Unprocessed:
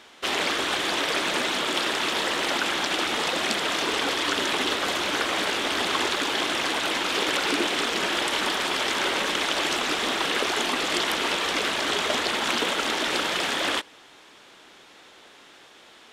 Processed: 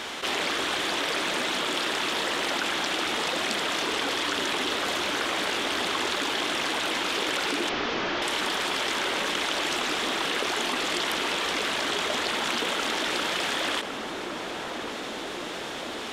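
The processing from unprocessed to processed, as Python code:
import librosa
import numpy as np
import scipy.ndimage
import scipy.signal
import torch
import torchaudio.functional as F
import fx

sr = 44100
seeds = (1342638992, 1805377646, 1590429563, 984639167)

y = fx.delta_mod(x, sr, bps=32000, step_db=-35.0, at=(7.69, 8.22))
y = fx.echo_filtered(y, sr, ms=1108, feedback_pct=71, hz=1000.0, wet_db=-18.5)
y = fx.env_flatten(y, sr, amount_pct=70)
y = y * 10.0 ** (-4.5 / 20.0)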